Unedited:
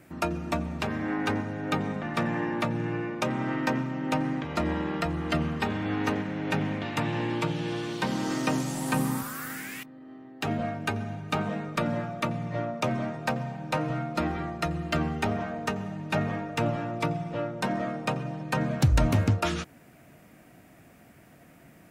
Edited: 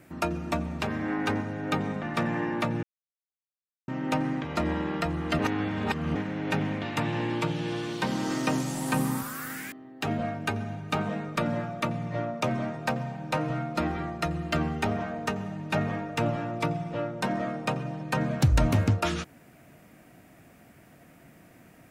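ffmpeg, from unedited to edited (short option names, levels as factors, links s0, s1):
-filter_complex "[0:a]asplit=6[s0][s1][s2][s3][s4][s5];[s0]atrim=end=2.83,asetpts=PTS-STARTPTS,afade=t=out:st=2.826:d=0.004:c=hsin[s6];[s1]atrim=start=2.83:end=3.88,asetpts=PTS-STARTPTS,volume=0[s7];[s2]atrim=start=3.88:end=5.392,asetpts=PTS-STARTPTS,afade=t=in:d=0.004:c=hsin[s8];[s3]atrim=start=5.388:end=6.152,asetpts=PTS-STARTPTS,areverse[s9];[s4]atrim=start=6.148:end=9.722[s10];[s5]atrim=start=10.118[s11];[s6][s7][s8]concat=n=3:v=0:a=1[s12];[s12][s9]acrossfade=d=0.004:c1=hsin:c2=hsin[s13];[s13][s10]acrossfade=d=0.004:c1=hsin:c2=hsin[s14];[s14][s11]acrossfade=d=0.004:c1=hsin:c2=hsin"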